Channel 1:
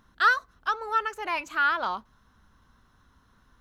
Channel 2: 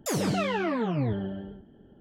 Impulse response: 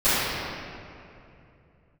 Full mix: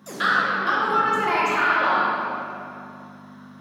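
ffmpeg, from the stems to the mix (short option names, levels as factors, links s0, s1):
-filter_complex "[0:a]acompressor=threshold=0.0316:ratio=6,aeval=exprs='val(0)+0.00398*(sin(2*PI*50*n/s)+sin(2*PI*2*50*n/s)/2+sin(2*PI*3*50*n/s)/3+sin(2*PI*4*50*n/s)/4+sin(2*PI*5*50*n/s)/5)':c=same,volume=1.19,asplit=2[s0][s1];[s1]volume=0.398[s2];[1:a]volume=0.299,asplit=2[s3][s4];[s4]volume=0.15[s5];[2:a]atrim=start_sample=2205[s6];[s2][s5]amix=inputs=2:normalize=0[s7];[s7][s6]afir=irnorm=-1:irlink=0[s8];[s0][s3][s8]amix=inputs=3:normalize=0,highpass=f=190:w=0.5412,highpass=f=190:w=1.3066"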